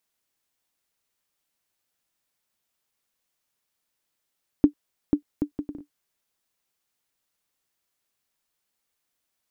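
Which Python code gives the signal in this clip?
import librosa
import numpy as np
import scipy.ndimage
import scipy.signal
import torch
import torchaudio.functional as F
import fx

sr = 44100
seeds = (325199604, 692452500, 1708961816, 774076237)

y = fx.bouncing_ball(sr, first_gap_s=0.49, ratio=0.59, hz=293.0, decay_ms=96.0, level_db=-5.5)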